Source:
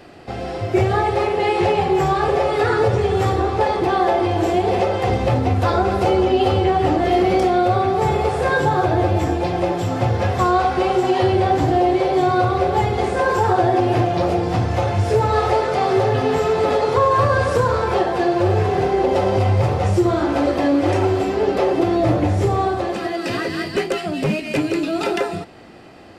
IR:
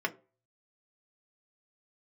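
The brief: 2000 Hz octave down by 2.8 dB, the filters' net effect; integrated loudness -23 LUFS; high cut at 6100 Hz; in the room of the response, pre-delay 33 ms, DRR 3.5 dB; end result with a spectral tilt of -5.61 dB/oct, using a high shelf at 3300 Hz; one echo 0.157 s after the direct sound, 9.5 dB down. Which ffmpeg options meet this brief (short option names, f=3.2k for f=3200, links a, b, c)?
-filter_complex "[0:a]lowpass=6.1k,equalizer=f=2k:t=o:g=-6,highshelf=f=3.3k:g=7.5,aecho=1:1:157:0.335,asplit=2[a][b];[1:a]atrim=start_sample=2205,adelay=33[c];[b][c]afir=irnorm=-1:irlink=0,volume=-10.5dB[d];[a][d]amix=inputs=2:normalize=0,volume=-6dB"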